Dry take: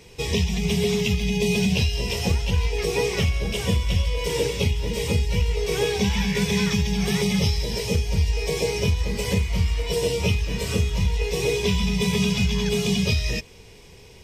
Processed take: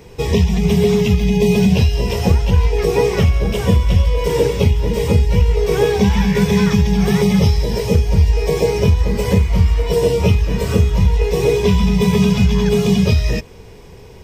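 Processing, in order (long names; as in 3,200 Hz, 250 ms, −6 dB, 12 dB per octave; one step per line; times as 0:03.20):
flat-topped bell 5,000 Hz −9 dB 2.8 octaves
level +9 dB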